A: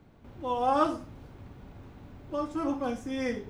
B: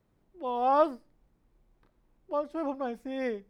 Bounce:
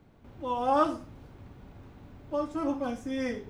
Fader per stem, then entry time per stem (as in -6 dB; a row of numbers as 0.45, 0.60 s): -1.5, -7.5 dB; 0.00, 0.00 s